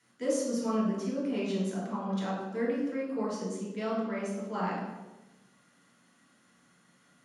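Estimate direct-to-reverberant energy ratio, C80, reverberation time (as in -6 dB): -6.5 dB, 3.5 dB, 1.1 s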